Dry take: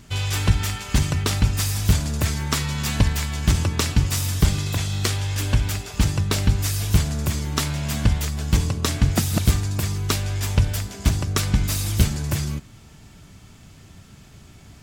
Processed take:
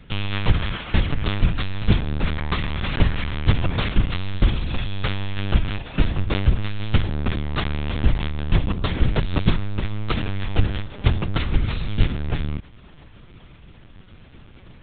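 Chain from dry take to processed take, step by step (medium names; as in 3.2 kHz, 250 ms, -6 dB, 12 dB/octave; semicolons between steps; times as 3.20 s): LPC vocoder at 8 kHz pitch kept; trim +1.5 dB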